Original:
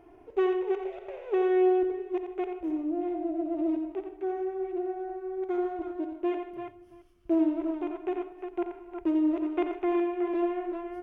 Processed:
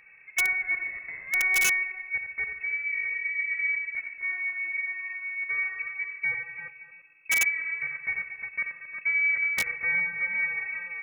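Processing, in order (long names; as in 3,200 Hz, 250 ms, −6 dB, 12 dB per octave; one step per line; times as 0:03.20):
feedback echo with a low-pass in the loop 229 ms, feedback 28%, low-pass 2,000 Hz, level −11 dB
voice inversion scrambler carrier 2,600 Hz
wrap-around overflow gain 17.5 dB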